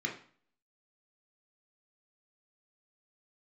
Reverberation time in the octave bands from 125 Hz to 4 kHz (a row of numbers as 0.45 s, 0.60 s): 0.55 s, 0.50 s, 0.45 s, 0.50 s, 0.45 s, 0.45 s